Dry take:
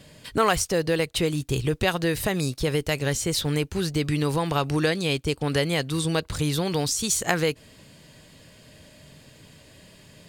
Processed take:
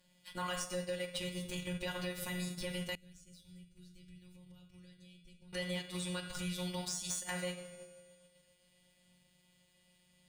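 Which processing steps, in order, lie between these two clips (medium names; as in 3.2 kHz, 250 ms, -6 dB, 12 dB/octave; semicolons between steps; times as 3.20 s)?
rattle on loud lows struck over -25 dBFS, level -24 dBFS; flange 1.9 Hz, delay 9 ms, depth 9.1 ms, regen +57%; gate -45 dBFS, range -11 dB; robot voice 180 Hz; peaking EQ 340 Hz -10 dB 1.3 oct; simulated room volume 2700 m³, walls furnished, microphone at 2.4 m; Chebyshev shaper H 4 -12 dB, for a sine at 3 dBFS; feedback comb 76 Hz, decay 1.7 s, harmonics all, mix 70%; transient shaper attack -3 dB, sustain -8 dB; compression 2.5:1, threshold -45 dBFS, peak gain reduction 7.5 dB; 2.95–5.53 s: amplifier tone stack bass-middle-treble 10-0-1; trim +7.5 dB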